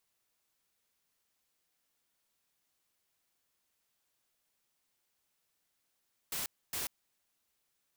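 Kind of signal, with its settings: noise bursts white, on 0.14 s, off 0.27 s, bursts 2, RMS -37 dBFS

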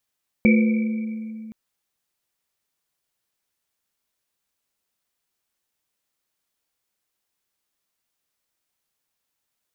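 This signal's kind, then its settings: Risset drum length 1.07 s, pitch 220 Hz, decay 2.93 s, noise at 2.3 kHz, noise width 130 Hz, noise 15%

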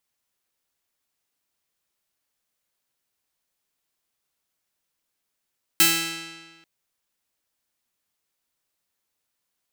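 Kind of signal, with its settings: plucked string E3, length 0.84 s, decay 1.45 s, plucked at 0.28, bright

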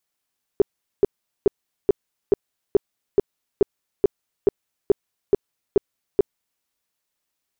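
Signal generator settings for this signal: tone bursts 402 Hz, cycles 7, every 0.43 s, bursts 14, -10 dBFS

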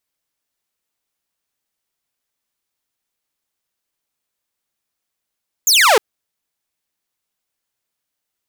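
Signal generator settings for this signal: laser zap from 7.3 kHz, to 390 Hz, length 0.31 s saw, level -6 dB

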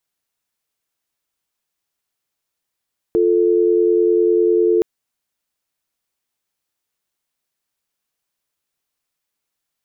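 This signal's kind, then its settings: call progress tone dial tone, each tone -14.5 dBFS 1.67 s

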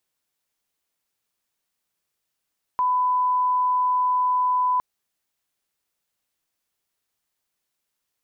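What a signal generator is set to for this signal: line-up tone -18 dBFS 2.01 s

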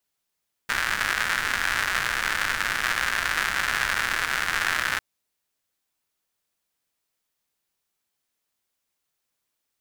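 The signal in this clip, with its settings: rain from filtered ticks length 4.30 s, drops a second 190, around 1.6 kHz, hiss -14 dB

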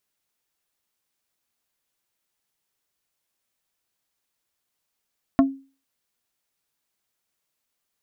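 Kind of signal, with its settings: wood hit plate, lowest mode 271 Hz, decay 0.35 s, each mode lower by 5.5 dB, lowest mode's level -10 dB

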